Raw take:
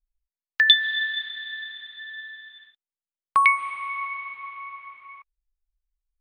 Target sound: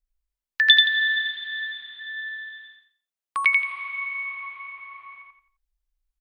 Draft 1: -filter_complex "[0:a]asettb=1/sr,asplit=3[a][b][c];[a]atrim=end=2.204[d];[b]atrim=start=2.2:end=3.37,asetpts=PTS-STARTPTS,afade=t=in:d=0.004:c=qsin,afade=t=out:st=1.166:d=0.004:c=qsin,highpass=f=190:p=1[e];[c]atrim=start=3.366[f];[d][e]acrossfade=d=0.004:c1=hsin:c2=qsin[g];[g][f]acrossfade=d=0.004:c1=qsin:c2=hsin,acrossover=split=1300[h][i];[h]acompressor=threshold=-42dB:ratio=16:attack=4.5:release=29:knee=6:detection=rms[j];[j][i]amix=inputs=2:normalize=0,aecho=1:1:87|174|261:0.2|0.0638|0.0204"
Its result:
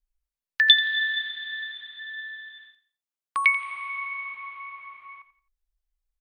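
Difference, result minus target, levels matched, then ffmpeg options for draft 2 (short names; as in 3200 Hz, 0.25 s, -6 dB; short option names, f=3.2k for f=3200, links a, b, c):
echo-to-direct -11.5 dB
-filter_complex "[0:a]asettb=1/sr,asplit=3[a][b][c];[a]atrim=end=2.204[d];[b]atrim=start=2.2:end=3.37,asetpts=PTS-STARTPTS,afade=t=in:d=0.004:c=qsin,afade=t=out:st=1.166:d=0.004:c=qsin,highpass=f=190:p=1[e];[c]atrim=start=3.366[f];[d][e]acrossfade=d=0.004:c1=hsin:c2=qsin[g];[g][f]acrossfade=d=0.004:c1=qsin:c2=hsin,acrossover=split=1300[h][i];[h]acompressor=threshold=-42dB:ratio=16:attack=4.5:release=29:knee=6:detection=rms[j];[j][i]amix=inputs=2:normalize=0,aecho=1:1:87|174|261|348:0.75|0.24|0.0768|0.0246"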